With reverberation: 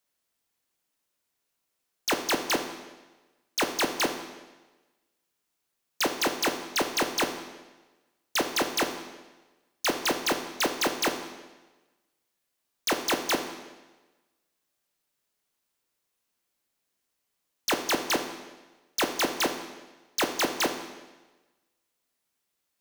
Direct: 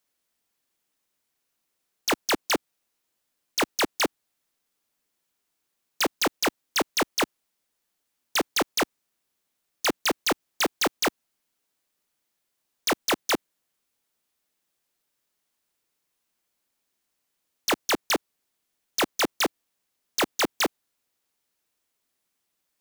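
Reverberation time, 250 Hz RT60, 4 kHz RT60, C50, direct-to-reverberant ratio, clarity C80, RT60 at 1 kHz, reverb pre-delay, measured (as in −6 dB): 1.2 s, 1.2 s, 1.1 s, 8.5 dB, 5.0 dB, 10.0 dB, 1.2 s, 12 ms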